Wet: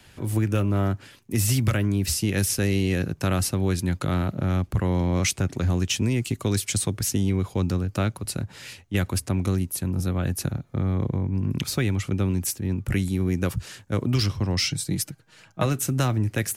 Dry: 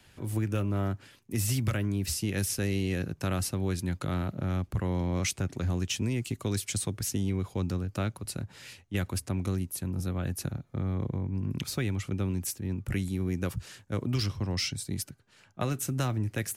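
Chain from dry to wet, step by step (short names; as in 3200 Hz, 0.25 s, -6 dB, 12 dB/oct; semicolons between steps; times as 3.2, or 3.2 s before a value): 14.7–15.66 comb 6.3 ms, depth 57%; gain +6.5 dB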